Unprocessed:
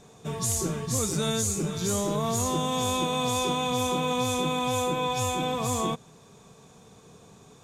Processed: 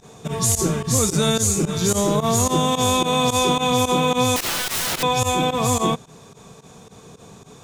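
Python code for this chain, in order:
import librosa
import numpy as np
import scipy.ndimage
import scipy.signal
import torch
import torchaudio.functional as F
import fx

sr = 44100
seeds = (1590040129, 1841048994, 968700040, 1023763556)

y = fx.overflow_wrap(x, sr, gain_db=27.0, at=(4.36, 5.03))
y = fx.volume_shaper(y, sr, bpm=109, per_beat=2, depth_db=-19, release_ms=70.0, shape='fast start')
y = y * librosa.db_to_amplitude(8.5)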